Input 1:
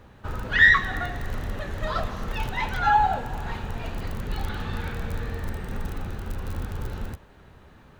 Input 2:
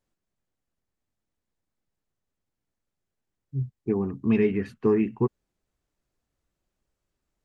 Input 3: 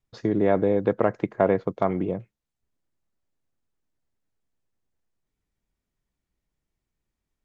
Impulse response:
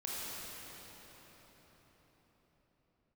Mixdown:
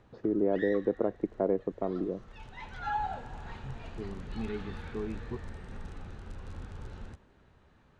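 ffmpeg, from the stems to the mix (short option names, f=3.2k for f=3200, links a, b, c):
-filter_complex "[0:a]lowpass=f=8.3k:w=0.5412,lowpass=f=8.3k:w=1.3066,volume=-11.5dB[a];[1:a]adelay=100,volume=-15.5dB[b];[2:a]acompressor=mode=upward:threshold=-30dB:ratio=2.5,bandpass=f=340:t=q:w=1.3:csg=0,volume=-4dB,asplit=2[c][d];[d]apad=whole_len=352433[e];[a][e]sidechaincompress=threshold=-41dB:ratio=3:attack=5.8:release=942[f];[f][b][c]amix=inputs=3:normalize=0"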